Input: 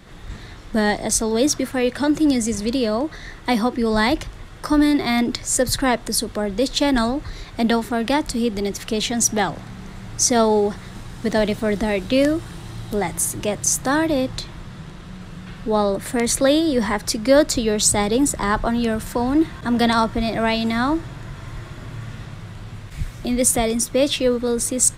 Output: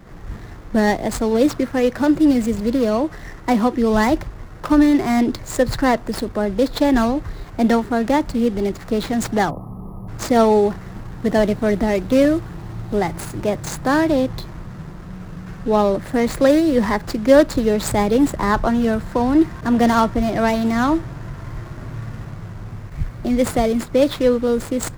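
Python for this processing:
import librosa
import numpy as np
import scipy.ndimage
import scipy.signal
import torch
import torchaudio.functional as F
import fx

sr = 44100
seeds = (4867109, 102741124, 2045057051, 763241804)

y = scipy.ndimage.median_filter(x, 15, mode='constant')
y = fx.spec_box(y, sr, start_s=9.5, length_s=0.58, low_hz=1300.0, high_hz=10000.0, gain_db=-27)
y = F.gain(torch.from_numpy(y), 3.0).numpy()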